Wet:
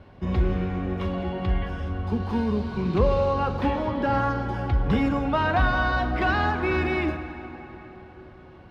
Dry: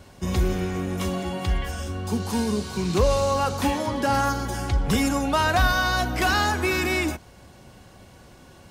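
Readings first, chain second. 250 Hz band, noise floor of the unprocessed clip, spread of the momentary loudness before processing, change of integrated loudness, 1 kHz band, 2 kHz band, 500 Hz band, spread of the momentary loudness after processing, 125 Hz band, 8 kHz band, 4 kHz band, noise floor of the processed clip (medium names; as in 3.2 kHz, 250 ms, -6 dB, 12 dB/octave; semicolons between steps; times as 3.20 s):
0.0 dB, -50 dBFS, 7 LU, -1.0 dB, -1.5 dB, -2.5 dB, -0.5 dB, 13 LU, +0.5 dB, under -25 dB, -9.0 dB, -47 dBFS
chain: distance through air 370 m; plate-style reverb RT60 4.3 s, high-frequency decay 0.6×, DRR 8.5 dB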